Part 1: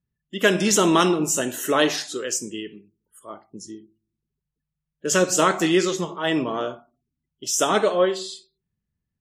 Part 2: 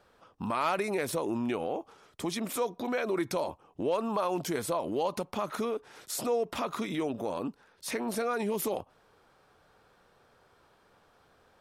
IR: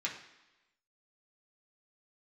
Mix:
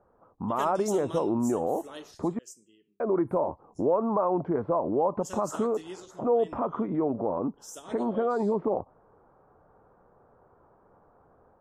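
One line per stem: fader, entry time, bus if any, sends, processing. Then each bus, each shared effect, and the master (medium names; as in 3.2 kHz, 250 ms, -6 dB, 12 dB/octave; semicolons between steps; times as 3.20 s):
-9.5 dB, 0.15 s, no send, peaking EQ 2 kHz -5.5 dB 1.8 oct; upward expansion 1.5:1, over -30 dBFS; auto duck -12 dB, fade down 0.85 s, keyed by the second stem
+0.5 dB, 0.00 s, muted 2.39–3.00 s, no send, level rider gain up to 4.5 dB; low-pass 1.1 kHz 24 dB/octave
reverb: none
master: treble shelf 4.7 kHz +8.5 dB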